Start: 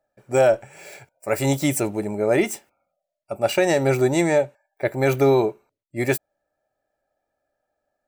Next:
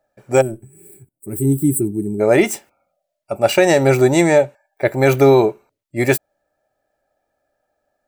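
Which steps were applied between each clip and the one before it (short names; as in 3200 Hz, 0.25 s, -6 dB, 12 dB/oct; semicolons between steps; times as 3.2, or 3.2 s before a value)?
spectral gain 0.41–2.2, 420–7700 Hz -28 dB; gain +6 dB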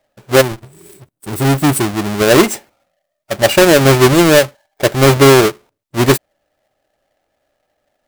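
half-waves squared off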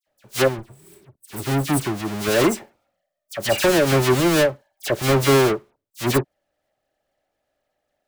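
dispersion lows, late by 70 ms, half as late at 2300 Hz; gain -8.5 dB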